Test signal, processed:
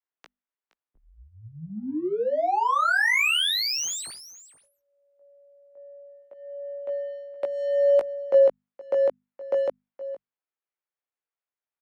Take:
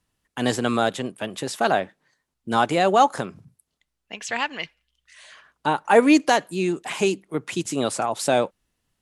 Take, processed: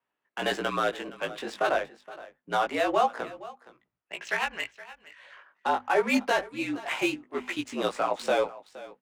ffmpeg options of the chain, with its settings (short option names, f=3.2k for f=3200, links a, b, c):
-filter_complex "[0:a]aemphasis=mode=production:type=riaa,acrossover=split=8300[a][b];[b]acompressor=threshold=-23dB:ratio=4:attack=1:release=60[c];[a][c]amix=inputs=2:normalize=0,acrossover=split=240 2900:gain=0.126 1 0.158[d][e][f];[d][e][f]amix=inputs=3:normalize=0,bandreject=f=50:t=h:w=6,bandreject=f=100:t=h:w=6,bandreject=f=150:t=h:w=6,bandreject=f=200:t=h:w=6,bandreject=f=250:t=h:w=6,bandreject=f=300:t=h:w=6,alimiter=limit=-13.5dB:level=0:latency=1:release=381,adynamicsmooth=sensitivity=5.5:basefreq=2.4k,aecho=1:1:469:0.133,flanger=delay=17:depth=2.6:speed=0.27,afreqshift=-51,volume=2.5dB"